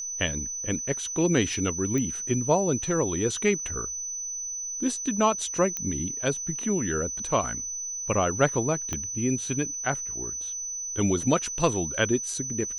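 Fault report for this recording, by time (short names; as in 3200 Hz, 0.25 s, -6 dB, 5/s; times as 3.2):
tone 6000 Hz -31 dBFS
1.98 pop -17 dBFS
5.77 pop -15 dBFS
8.93 pop -15 dBFS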